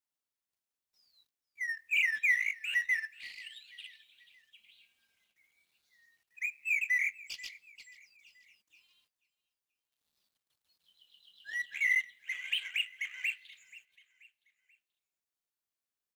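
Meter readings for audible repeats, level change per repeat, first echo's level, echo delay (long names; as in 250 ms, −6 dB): 3, −7.0 dB, −20.5 dB, 483 ms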